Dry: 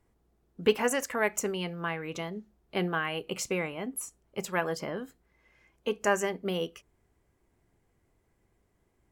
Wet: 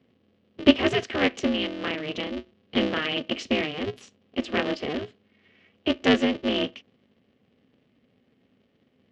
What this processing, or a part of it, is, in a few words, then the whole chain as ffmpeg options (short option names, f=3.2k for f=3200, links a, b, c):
ring modulator pedal into a guitar cabinet: -af "aeval=exprs='val(0)*sgn(sin(2*PI*150*n/s))':c=same,highpass=100,equalizer=f=250:t=q:w=4:g=9,equalizer=f=430:t=q:w=4:g=5,equalizer=f=920:t=q:w=4:g=-10,equalizer=f=1.4k:t=q:w=4:g=-5,equalizer=f=3k:t=q:w=4:g=8,lowpass=f=4.6k:w=0.5412,lowpass=f=4.6k:w=1.3066,volume=4dB"